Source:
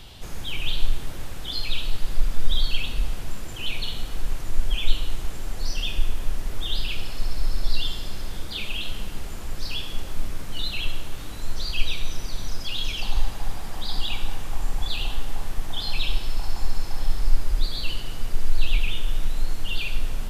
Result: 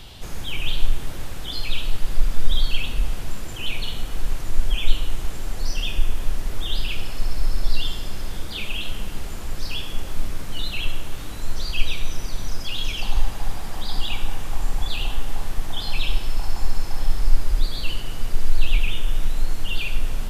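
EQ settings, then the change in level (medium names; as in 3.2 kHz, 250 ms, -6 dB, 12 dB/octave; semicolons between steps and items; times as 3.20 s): dynamic bell 4.1 kHz, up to -5 dB, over -48 dBFS, Q 2.6; +2.5 dB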